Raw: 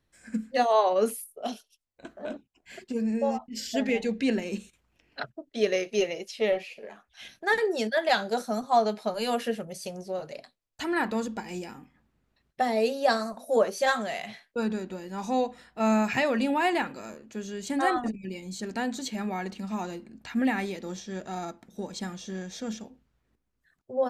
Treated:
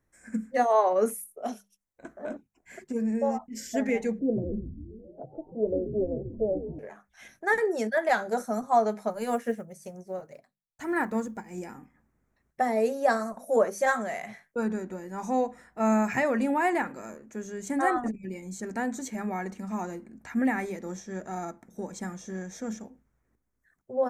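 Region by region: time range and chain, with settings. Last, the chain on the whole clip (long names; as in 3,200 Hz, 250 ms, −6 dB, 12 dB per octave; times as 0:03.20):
0:04.19–0:06.79: Butterworth low-pass 660 Hz + comb filter 6.1 ms, depth 34% + echo with shifted repeats 137 ms, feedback 64%, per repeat −140 Hz, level −9 dB
0:09.10–0:11.58: one scale factor per block 7 bits + parametric band 130 Hz +4.5 dB 1.4 octaves + expander for the loud parts, over −49 dBFS
whole clip: flat-topped bell 3,600 Hz −13 dB 1.1 octaves; mains-hum notches 50/100/150/200 Hz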